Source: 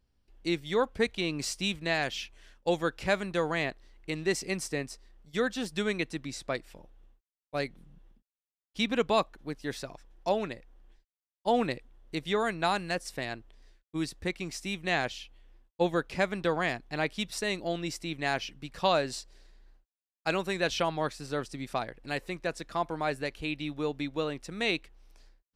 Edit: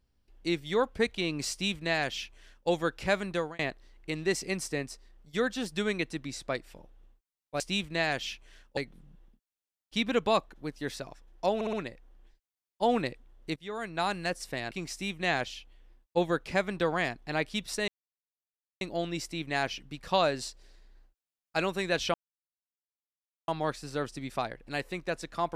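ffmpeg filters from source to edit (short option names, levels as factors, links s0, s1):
-filter_complex "[0:a]asplit=11[s0][s1][s2][s3][s4][s5][s6][s7][s8][s9][s10];[s0]atrim=end=3.59,asetpts=PTS-STARTPTS,afade=t=out:st=3.34:d=0.25[s11];[s1]atrim=start=3.59:end=7.602,asetpts=PTS-STARTPTS,afade=t=in:d=0.004:c=hsin[s12];[s2]atrim=start=1.508:end=2.682[s13];[s3]atrim=start=7.598:end=10.442[s14];[s4]atrim=start=10.378:end=10.442[s15];[s5]atrim=start=10.378:end=10.442[s16];[s6]atrim=start=10.378:end=12.21,asetpts=PTS-STARTPTS,afade=t=out:st=1.828:d=0.004:c=hsin:silence=0.105925[s17];[s7]atrim=start=12.21:end=13.362,asetpts=PTS-STARTPTS,afade=t=in:d=0.63:silence=0.105925[s18];[s8]atrim=start=14.348:end=17.52,asetpts=PTS-STARTPTS,afade=t=out:st=3.168:d=0.004:c=hsin,apad=pad_dur=0.93[s19];[s9]atrim=start=17.52:end=20.85,asetpts=PTS-STARTPTS,afade=t=in:d=0.004:c=hsin,afade=t=out:st=3.326:d=0.004:c=hsin,apad=pad_dur=1.34[s20];[s10]atrim=start=20.85,asetpts=PTS-STARTPTS,afade=t=in:d=0.004:c=hsin[s21];[s11][s12]concat=n=2:v=0:a=1[s22];[s22][s13]acrossfade=d=0.004:c1=hsin:c2=hsin[s23];[s23][s14]acrossfade=d=0.004:c1=hsin:c2=hsin[s24];[s24][s15]acrossfade=d=0.004:c1=hsin:c2=hsin[s25];[s25][s16]acrossfade=d=0.004:c1=hsin:c2=hsin[s26];[s17][s18]concat=n=2:v=0:a=1[s27];[s26][s27]acrossfade=d=0.004:c1=hsin:c2=hsin[s28];[s19][s20][s21]concat=n=3:v=0:a=1[s29];[s28][s29]acrossfade=d=0.004:c1=hsin:c2=hsin"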